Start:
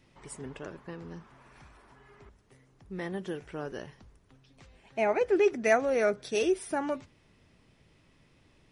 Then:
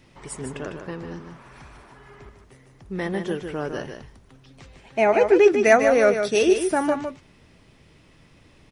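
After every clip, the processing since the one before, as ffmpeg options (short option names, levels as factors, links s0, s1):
-af "aecho=1:1:151:0.447,volume=2.66"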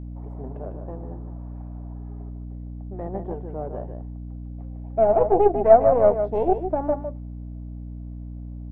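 -af "aeval=exprs='0.708*(cos(1*acos(clip(val(0)/0.708,-1,1)))-cos(1*PI/2))+0.0891*(cos(3*acos(clip(val(0)/0.708,-1,1)))-cos(3*PI/2))+0.1*(cos(4*acos(clip(val(0)/0.708,-1,1)))-cos(4*PI/2))+0.02*(cos(8*acos(clip(val(0)/0.708,-1,1)))-cos(8*PI/2))':c=same,lowpass=f=700:t=q:w=3.7,aeval=exprs='val(0)+0.0355*(sin(2*PI*60*n/s)+sin(2*PI*2*60*n/s)/2+sin(2*PI*3*60*n/s)/3+sin(2*PI*4*60*n/s)/4+sin(2*PI*5*60*n/s)/5)':c=same,volume=0.596"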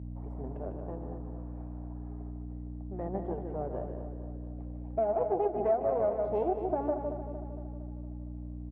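-filter_complex "[0:a]highpass=48,acompressor=threshold=0.0708:ratio=4,asplit=2[s0][s1];[s1]aecho=0:1:230|460|690|920|1150|1380|1610:0.335|0.188|0.105|0.0588|0.0329|0.0184|0.0103[s2];[s0][s2]amix=inputs=2:normalize=0,volume=0.631"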